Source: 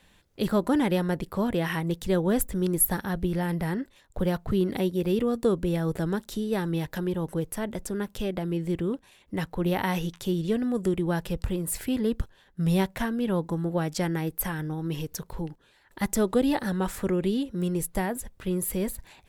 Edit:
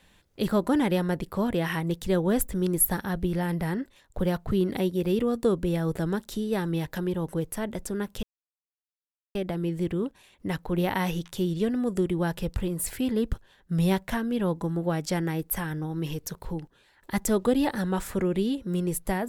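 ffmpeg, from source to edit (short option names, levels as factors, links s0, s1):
-filter_complex "[0:a]asplit=2[s0][s1];[s0]atrim=end=8.23,asetpts=PTS-STARTPTS,afade=t=out:st=8.226:d=0.004:c=hsin,apad=pad_dur=1.12[s2];[s1]atrim=start=8.23,asetpts=PTS-STARTPTS,afade=t=in:d=0.004:c=hsin[s3];[s2][s3]concat=n=2:v=0:a=1"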